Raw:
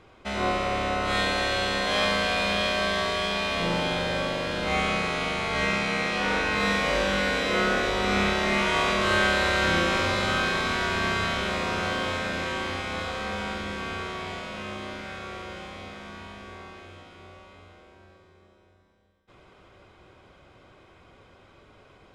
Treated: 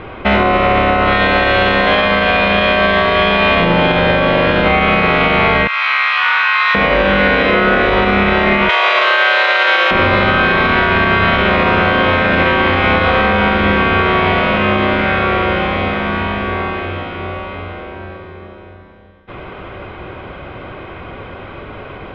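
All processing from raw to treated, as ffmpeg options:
-filter_complex "[0:a]asettb=1/sr,asplit=3[a][b][c];[a]atrim=end=5.674[d];[b]atrim=start=5.67:end=6.75,asetpts=PTS-STARTPTS,afade=t=in:d=0.004:c=qsin,afade=t=out:st=1.076:d=0.004:c=qsin,highpass=f=1.1k:t=q:w=3,aderivative,adynamicsmooth=sensitivity=5:basefreq=7.7k[e];[c]atrim=start=6.746[f];[d][e]acrossfade=d=0.004:c1=hsin:c2=qsin[g];[g][f]acrossfade=d=0.004:c1=qsin:c2=hsin,asettb=1/sr,asplit=3[h][i][j];[h]atrim=end=8.694[k];[i]atrim=start=8.69:end=9.91,asetpts=PTS-STARTPTS,afade=t=in:d=0.004:c=qsin,afade=t=out:st=1.216:d=0.004:c=qsin,highpass=f=500:w=0.5412,highpass=f=500:w=1.3066,equalizer=f=9.3k:w=0.45:g=14[l];[j]atrim=start=9.906[m];[k][l]acrossfade=d=0.004:c1=hsin:c2=qsin[n];[n][m]acrossfade=d=0.004:c1=qsin:c2=hsin,lowpass=f=3k:w=0.5412,lowpass=f=3k:w=1.3066,acompressor=threshold=-32dB:ratio=6,alimiter=level_in=26dB:limit=-1dB:release=50:level=0:latency=1,volume=-2dB"

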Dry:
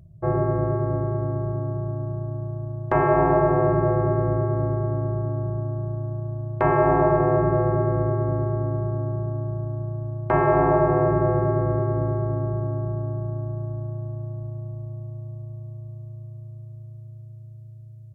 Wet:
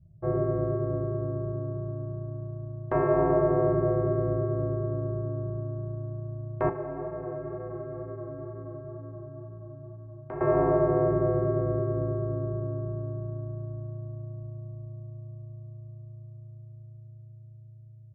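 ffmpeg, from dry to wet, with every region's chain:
-filter_complex "[0:a]asettb=1/sr,asplit=3[a][b][c];[a]atrim=end=6.694[d];[b]atrim=start=6.69:end=10.41,asetpts=PTS-STARTPTS,afade=t=in:d=0.004:c=qsin,afade=t=out:st=3.716:d=0.004:c=qsin,flanger=delay=18:depth=3.2:speed=2.1,acrossover=split=180|740|2300[e][f][g][h];[e]acompressor=threshold=-42dB:ratio=3[i];[f]acompressor=threshold=-33dB:ratio=3[j];[g]acompressor=threshold=-41dB:ratio=3[k];[h]acompressor=threshold=-55dB:ratio=3[l];[i][j][k][l]amix=inputs=4:normalize=0[m];[c]atrim=start=10.406[n];[d][m]acrossfade=d=0.004:c1=hsin:c2=qsin[o];[o][n]acrossfade=d=0.004:c1=qsin:c2=hsin,adynamicequalizer=threshold=0.02:dfrequency=470:dqfactor=1.1:tfrequency=470:tqfactor=1.1:attack=5:release=100:ratio=0.375:range=2.5:mode=boostabove:tftype=bell,lowpass=f=1.5k:p=1,bandreject=f=840:w=21,volume=-6.5dB"

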